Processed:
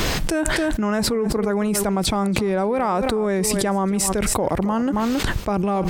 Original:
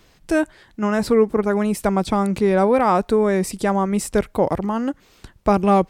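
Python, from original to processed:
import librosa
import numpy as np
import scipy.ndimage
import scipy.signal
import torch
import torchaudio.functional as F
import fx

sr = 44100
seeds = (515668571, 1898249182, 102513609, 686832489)

y = fx.rider(x, sr, range_db=10, speed_s=2.0)
y = y + 10.0 ** (-18.0 / 20.0) * np.pad(y, (int(271 * sr / 1000.0), 0))[:len(y)]
y = fx.env_flatten(y, sr, amount_pct=100)
y = y * 10.0 ** (-10.0 / 20.0)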